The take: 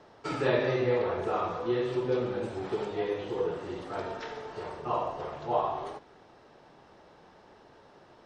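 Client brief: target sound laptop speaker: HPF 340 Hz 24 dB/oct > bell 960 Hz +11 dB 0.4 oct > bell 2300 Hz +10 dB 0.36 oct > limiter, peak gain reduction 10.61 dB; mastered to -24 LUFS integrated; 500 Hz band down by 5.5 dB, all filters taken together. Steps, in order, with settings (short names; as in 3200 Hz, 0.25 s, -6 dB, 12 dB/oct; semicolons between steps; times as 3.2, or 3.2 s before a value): HPF 340 Hz 24 dB/oct; bell 500 Hz -7 dB; bell 960 Hz +11 dB 0.4 oct; bell 2300 Hz +10 dB 0.36 oct; gain +11.5 dB; limiter -14 dBFS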